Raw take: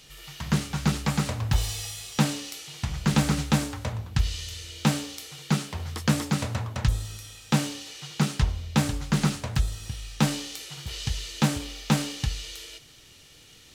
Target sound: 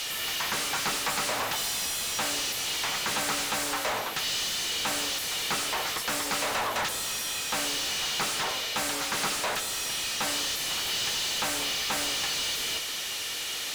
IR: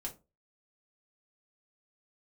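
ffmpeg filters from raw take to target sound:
-filter_complex "[0:a]highpass=440,equalizer=f=14000:w=0.56:g=11.5,alimiter=limit=0.112:level=0:latency=1:release=133,asplit=2[s0][s1];[s1]highpass=f=720:p=1,volume=39.8,asoftclip=type=tanh:threshold=0.0944[s2];[s0][s2]amix=inputs=2:normalize=0,lowpass=f=3900:p=1,volume=0.501"

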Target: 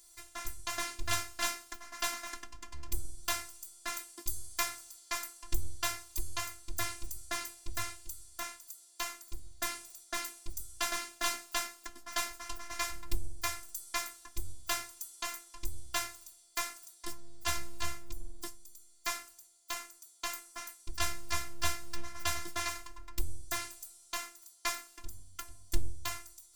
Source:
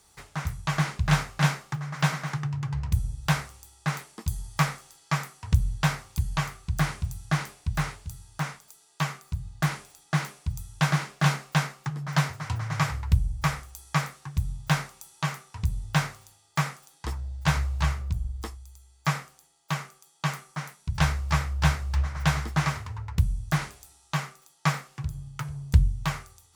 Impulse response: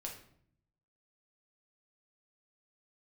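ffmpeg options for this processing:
-af "crystalizer=i=3:c=0,lowshelf=f=75:g=7.5,afftfilt=real='hypot(re,im)*cos(PI*b)':imag='0':win_size=512:overlap=0.75,volume=0.501"

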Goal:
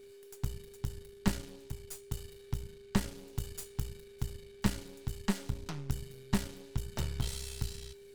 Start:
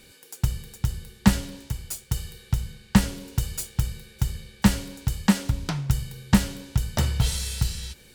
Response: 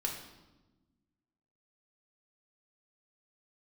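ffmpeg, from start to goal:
-af "aeval=exprs='if(lt(val(0),0),0.251*val(0),val(0))':c=same,bandreject=f=301.9:t=h:w=4,bandreject=f=603.8:t=h:w=4,bandreject=f=905.7:t=h:w=4,bandreject=f=1207.6:t=h:w=4,bandreject=f=1509.5:t=h:w=4,bandreject=f=1811.4:t=h:w=4,bandreject=f=2113.3:t=h:w=4,bandreject=f=2415.2:t=h:w=4,bandreject=f=2717.1:t=h:w=4,bandreject=f=3019:t=h:w=4,bandreject=f=3320.9:t=h:w=4,bandreject=f=3622.8:t=h:w=4,bandreject=f=3924.7:t=h:w=4,bandreject=f=4226.6:t=h:w=4,bandreject=f=4528.5:t=h:w=4,bandreject=f=4830.4:t=h:w=4,bandreject=f=5132.3:t=h:w=4,bandreject=f=5434.2:t=h:w=4,bandreject=f=5736.1:t=h:w=4,bandreject=f=6038:t=h:w=4,bandreject=f=6339.9:t=h:w=4,bandreject=f=6641.8:t=h:w=4,bandreject=f=6943.7:t=h:w=4,bandreject=f=7245.6:t=h:w=4,bandreject=f=7547.5:t=h:w=4,bandreject=f=7849.4:t=h:w=4,bandreject=f=8151.3:t=h:w=4,bandreject=f=8453.2:t=h:w=4,bandreject=f=8755.1:t=h:w=4,bandreject=f=9057:t=h:w=4,bandreject=f=9358.9:t=h:w=4,bandreject=f=9660.8:t=h:w=4,bandreject=f=9962.7:t=h:w=4,bandreject=f=10264.6:t=h:w=4,bandreject=f=10566.5:t=h:w=4,aeval=exprs='val(0)+0.00794*sin(2*PI*400*n/s)':c=same,volume=0.355"

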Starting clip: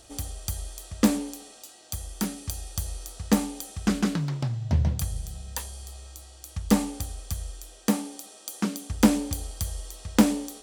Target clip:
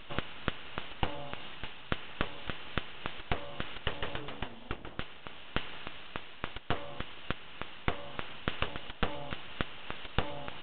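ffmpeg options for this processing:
-af "acompressor=threshold=0.0178:ratio=5,highpass=340,aeval=exprs='abs(val(0))':c=same,equalizer=f=2900:w=5.5:g=5.5,volume=3.16" -ar 8000 -c:a pcm_mulaw

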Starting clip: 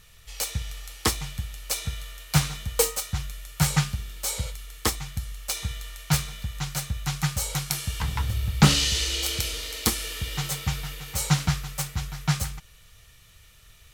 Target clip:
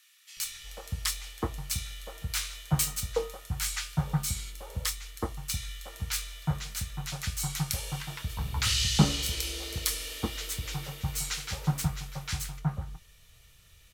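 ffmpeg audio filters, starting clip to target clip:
-filter_complex "[0:a]asplit=2[s0][s1];[s1]adelay=24,volume=0.237[s2];[s0][s2]amix=inputs=2:normalize=0,acrossover=split=1300[s3][s4];[s3]adelay=370[s5];[s5][s4]amix=inputs=2:normalize=0,volume=0.596"

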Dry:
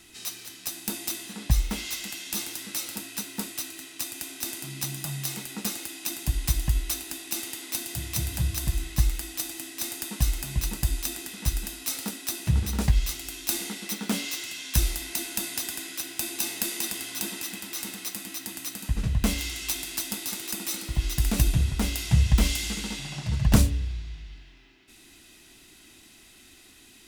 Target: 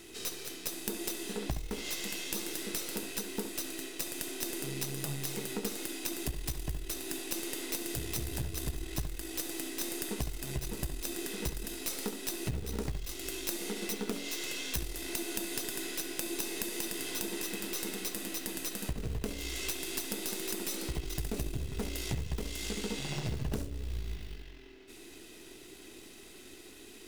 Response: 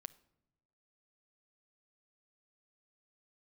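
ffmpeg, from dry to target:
-filter_complex "[0:a]aeval=exprs='if(lt(val(0),0),0.447*val(0),val(0))':c=same,acrusher=bits=5:mode=log:mix=0:aa=0.000001,equalizer=f=420:w=1.8:g=13.5,acompressor=threshold=0.0224:ratio=12,asplit=2[s0][s1];[1:a]atrim=start_sample=2205,lowpass=3400,adelay=68[s2];[s1][s2]afir=irnorm=-1:irlink=0,volume=0.631[s3];[s0][s3]amix=inputs=2:normalize=0,volume=1.19"

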